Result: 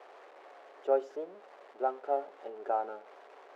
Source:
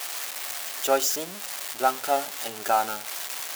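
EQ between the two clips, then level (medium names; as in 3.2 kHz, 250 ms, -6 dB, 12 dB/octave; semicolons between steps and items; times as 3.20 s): ladder band-pass 500 Hz, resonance 50%; +4.0 dB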